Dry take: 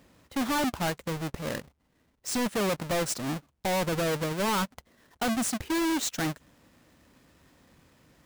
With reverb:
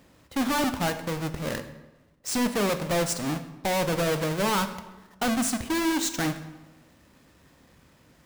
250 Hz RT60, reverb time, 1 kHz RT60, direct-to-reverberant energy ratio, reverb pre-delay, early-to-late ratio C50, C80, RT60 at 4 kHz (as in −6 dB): 1.3 s, 1.2 s, 1.1 s, 9.0 dB, 18 ms, 11.5 dB, 13.0 dB, 0.80 s